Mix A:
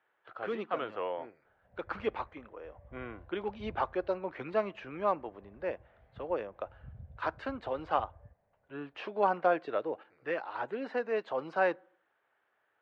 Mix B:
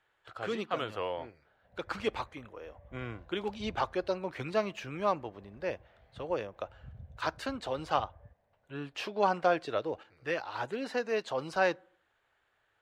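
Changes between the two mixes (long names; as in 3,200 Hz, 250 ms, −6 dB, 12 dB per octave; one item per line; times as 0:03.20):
speech: remove band-pass filter 220–2,100 Hz
background: remove high-frequency loss of the air 340 metres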